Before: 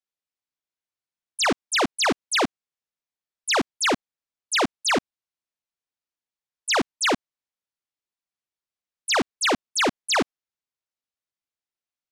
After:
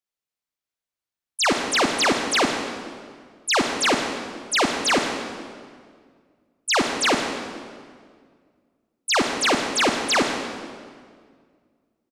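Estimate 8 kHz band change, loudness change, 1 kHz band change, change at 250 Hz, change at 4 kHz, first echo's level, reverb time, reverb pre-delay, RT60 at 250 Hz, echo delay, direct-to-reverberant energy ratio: +2.0 dB, +1.5 dB, +2.5 dB, +2.5 dB, +2.5 dB, −15.0 dB, 1.9 s, 33 ms, 2.2 s, 159 ms, 3.5 dB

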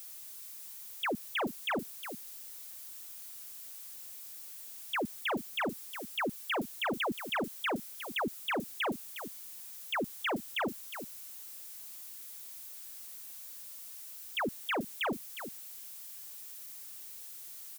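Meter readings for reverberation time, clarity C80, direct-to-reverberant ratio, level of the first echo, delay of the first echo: no reverb audible, no reverb audible, no reverb audible, −10.5 dB, 359 ms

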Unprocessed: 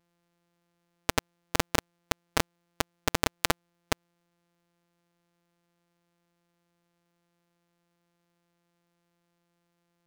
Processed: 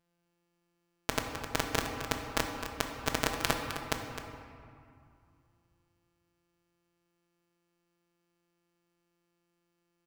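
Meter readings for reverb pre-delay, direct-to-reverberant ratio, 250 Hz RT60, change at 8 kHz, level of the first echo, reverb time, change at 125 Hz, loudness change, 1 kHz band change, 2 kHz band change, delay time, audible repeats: 5 ms, 2.0 dB, 2.9 s, −3.5 dB, −10.5 dB, 2.4 s, −2.5 dB, −3.0 dB, −2.0 dB, −2.0 dB, 259 ms, 1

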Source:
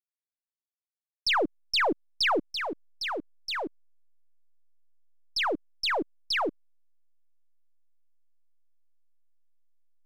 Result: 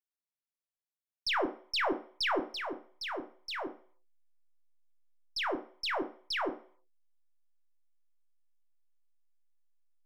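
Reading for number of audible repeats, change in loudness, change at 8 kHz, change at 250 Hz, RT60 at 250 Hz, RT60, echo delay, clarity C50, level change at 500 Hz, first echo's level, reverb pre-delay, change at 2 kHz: no echo audible, −5.5 dB, −6.5 dB, −4.0 dB, 0.35 s, 0.45 s, no echo audible, 13.0 dB, −4.5 dB, no echo audible, 3 ms, −5.5 dB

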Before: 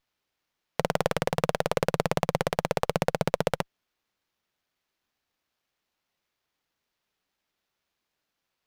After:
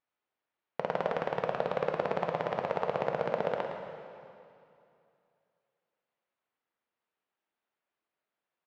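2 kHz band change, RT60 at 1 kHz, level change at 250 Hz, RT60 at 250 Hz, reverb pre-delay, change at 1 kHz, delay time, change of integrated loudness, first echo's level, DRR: −6.0 dB, 2.6 s, −8.0 dB, 2.7 s, 5 ms, −3.0 dB, 111 ms, −4.5 dB, −9.0 dB, 2.0 dB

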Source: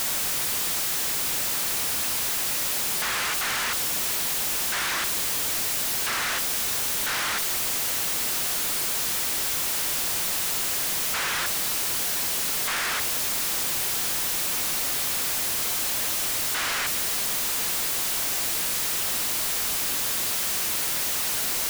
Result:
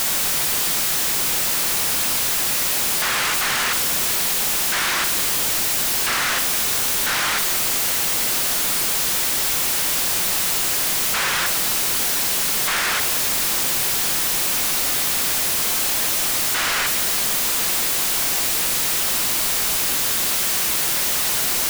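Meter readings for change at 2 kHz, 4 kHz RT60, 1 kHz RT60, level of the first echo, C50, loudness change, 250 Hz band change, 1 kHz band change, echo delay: +6.0 dB, 1.1 s, 1.4 s, no echo audible, 10.5 dB, +6.0 dB, +6.5 dB, +6.0 dB, no echo audible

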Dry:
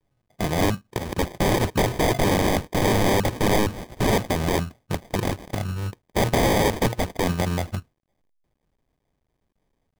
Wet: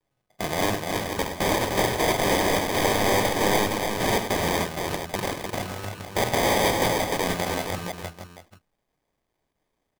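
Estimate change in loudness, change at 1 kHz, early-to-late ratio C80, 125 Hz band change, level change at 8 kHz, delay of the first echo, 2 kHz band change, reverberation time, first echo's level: −1.0 dB, +1.0 dB, no reverb audible, −7.0 dB, +2.5 dB, 49 ms, +2.0 dB, no reverb audible, −11.5 dB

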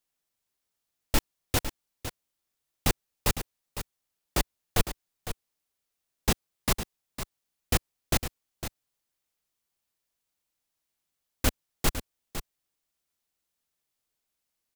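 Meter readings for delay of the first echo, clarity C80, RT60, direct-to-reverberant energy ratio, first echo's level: 506 ms, no reverb audible, no reverb audible, no reverb audible, −10.5 dB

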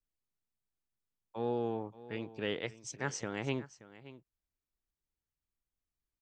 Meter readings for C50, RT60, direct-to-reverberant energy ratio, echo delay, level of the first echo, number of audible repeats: no reverb audible, no reverb audible, no reverb audible, 577 ms, −17.0 dB, 1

